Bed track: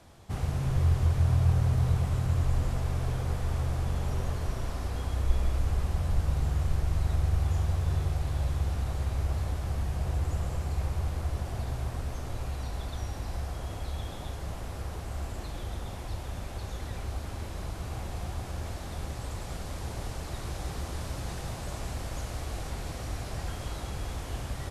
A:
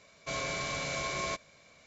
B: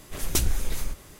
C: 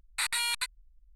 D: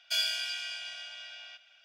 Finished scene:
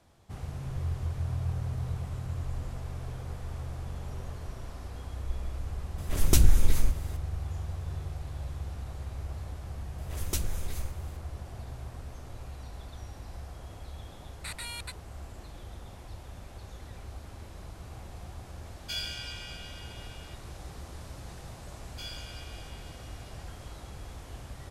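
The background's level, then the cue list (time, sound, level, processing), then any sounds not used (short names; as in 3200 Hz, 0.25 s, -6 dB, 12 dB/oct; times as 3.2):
bed track -8 dB
5.98 add B -1.5 dB + low shelf 320 Hz +8 dB
9.98 add B -8 dB
14.26 add C -10 dB
18.78 add D -6 dB
21.87 add D -13.5 dB
not used: A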